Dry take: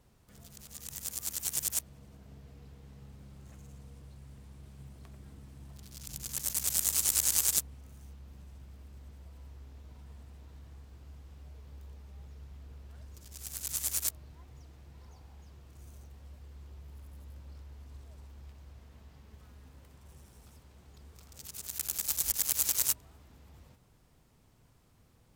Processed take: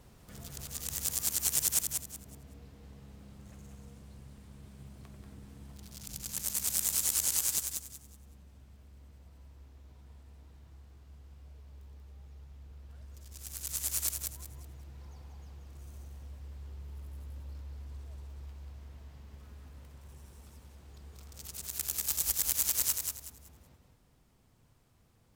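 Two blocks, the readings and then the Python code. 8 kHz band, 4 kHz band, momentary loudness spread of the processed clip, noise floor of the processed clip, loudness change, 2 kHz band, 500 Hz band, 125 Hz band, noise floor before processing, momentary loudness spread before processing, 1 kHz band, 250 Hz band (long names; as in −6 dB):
0.0 dB, 0.0 dB, 23 LU, −65 dBFS, −1.0 dB, 0.0 dB, +0.5 dB, +1.5 dB, −64 dBFS, 22 LU, +0.5 dB, +1.5 dB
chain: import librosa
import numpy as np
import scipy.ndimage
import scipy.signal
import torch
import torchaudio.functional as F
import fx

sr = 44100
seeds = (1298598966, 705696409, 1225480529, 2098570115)

p1 = fx.rider(x, sr, range_db=10, speed_s=2.0)
y = p1 + fx.echo_feedback(p1, sr, ms=187, feedback_pct=27, wet_db=-5.0, dry=0)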